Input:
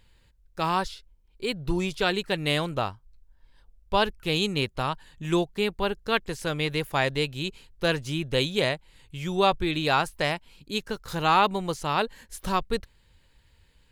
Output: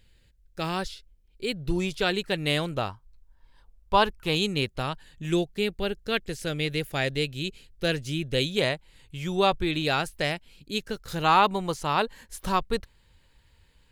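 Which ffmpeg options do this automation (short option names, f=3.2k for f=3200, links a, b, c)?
-af "asetnsamples=n=441:p=0,asendcmd='1.76 equalizer g -4.5;2.89 equalizer g 5;4.35 equalizer g -6.5;5.3 equalizer g -13.5;8.57 equalizer g -2.5;9.82 equalizer g -9;11.24 equalizer g 1.5',equalizer=f=1k:t=o:w=0.67:g=-11"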